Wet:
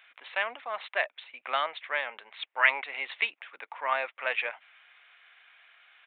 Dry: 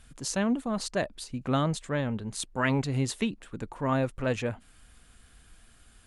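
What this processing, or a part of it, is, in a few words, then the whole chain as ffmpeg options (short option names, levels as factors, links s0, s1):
musical greeting card: -af "aresample=8000,aresample=44100,highpass=f=690:w=0.5412,highpass=f=690:w=1.3066,equalizer=f=2200:t=o:w=0.59:g=11.5,volume=1.26"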